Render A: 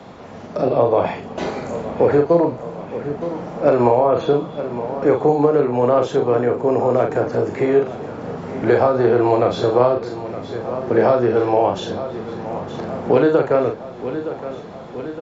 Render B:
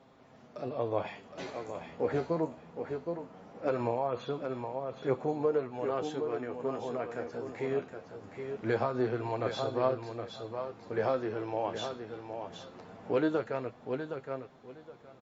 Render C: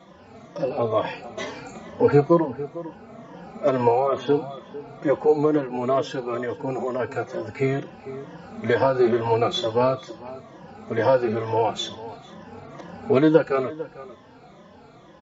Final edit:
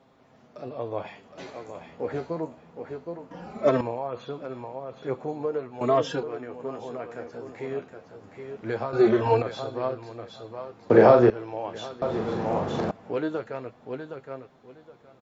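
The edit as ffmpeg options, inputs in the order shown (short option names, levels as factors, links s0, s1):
-filter_complex "[2:a]asplit=3[s0][s1][s2];[0:a]asplit=2[s3][s4];[1:a]asplit=6[s5][s6][s7][s8][s9][s10];[s5]atrim=end=3.312[s11];[s0]atrim=start=3.308:end=3.812[s12];[s6]atrim=start=3.808:end=5.812[s13];[s1]atrim=start=5.808:end=6.232[s14];[s7]atrim=start=6.228:end=8.932[s15];[s2]atrim=start=8.928:end=9.422[s16];[s8]atrim=start=9.418:end=10.902[s17];[s3]atrim=start=10.898:end=11.302[s18];[s9]atrim=start=11.298:end=12.022[s19];[s4]atrim=start=12.018:end=12.912[s20];[s10]atrim=start=12.908[s21];[s11][s12]acrossfade=d=0.004:c1=hsin:c2=hsin[s22];[s22][s13]acrossfade=d=0.004:c1=hsin:c2=hsin[s23];[s23][s14]acrossfade=d=0.004:c1=hsin:c2=hsin[s24];[s24][s15]acrossfade=d=0.004:c1=hsin:c2=hsin[s25];[s25][s16]acrossfade=d=0.004:c1=hsin:c2=hsin[s26];[s26][s17]acrossfade=d=0.004:c1=hsin:c2=hsin[s27];[s27][s18]acrossfade=d=0.004:c1=hsin:c2=hsin[s28];[s28][s19]acrossfade=d=0.004:c1=hsin:c2=hsin[s29];[s29][s20]acrossfade=d=0.004:c1=hsin:c2=hsin[s30];[s30][s21]acrossfade=d=0.004:c1=hsin:c2=hsin"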